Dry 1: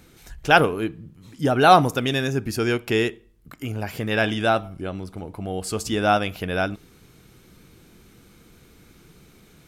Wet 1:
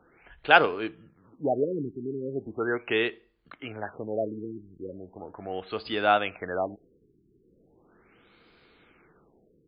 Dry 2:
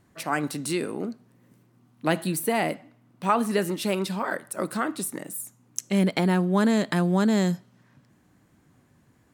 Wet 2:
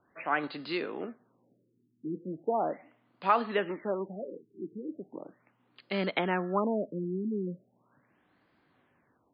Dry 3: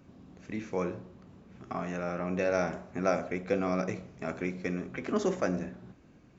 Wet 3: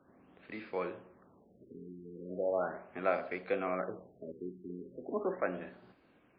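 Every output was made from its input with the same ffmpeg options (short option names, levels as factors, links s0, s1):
-filter_complex "[0:a]bass=f=250:g=-14,treble=f=4000:g=-13,acrossover=split=200|1300[s0][s1][s2];[s0]acrusher=samples=29:mix=1:aa=0.000001[s3];[s3][s1][s2]amix=inputs=3:normalize=0,crystalizer=i=2.5:c=0,afftfilt=real='re*lt(b*sr/1024,420*pow(5100/420,0.5+0.5*sin(2*PI*0.38*pts/sr)))':imag='im*lt(b*sr/1024,420*pow(5100/420,0.5+0.5*sin(2*PI*0.38*pts/sr)))':win_size=1024:overlap=0.75,volume=0.75"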